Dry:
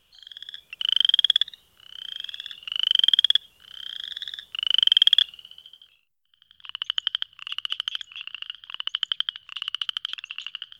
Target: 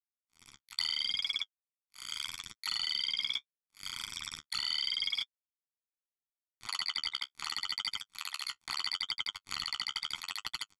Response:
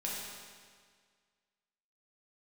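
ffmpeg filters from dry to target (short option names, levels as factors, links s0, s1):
-filter_complex "[0:a]areverse,acompressor=mode=upward:threshold=0.00891:ratio=2.5,areverse,highpass=f=380:w=0.5412,highpass=f=380:w=1.3066,equalizer=f=410:t=q:w=4:g=9,equalizer=f=580:t=q:w=4:g=-4,equalizer=f=910:t=q:w=4:g=7,equalizer=f=1300:t=q:w=4:g=7,equalizer=f=1900:t=q:w=4:g=-5,equalizer=f=3000:t=q:w=4:g=3,lowpass=f=3300:w=0.5412,lowpass=f=3300:w=1.3066,aresample=16000,acrusher=bits=3:mix=0:aa=0.5,aresample=44100,asplit=4[s0][s1][s2][s3];[s1]asetrate=29433,aresample=44100,atempo=1.49831,volume=0.282[s4];[s2]asetrate=52444,aresample=44100,atempo=0.840896,volume=0.178[s5];[s3]asetrate=66075,aresample=44100,atempo=0.66742,volume=0.794[s6];[s0][s4][s5][s6]amix=inputs=4:normalize=0,flanger=delay=8.1:depth=7.3:regen=-25:speed=0.76:shape=triangular,acompressor=threshold=0.0224:ratio=10,aecho=1:1:0.9:0.75"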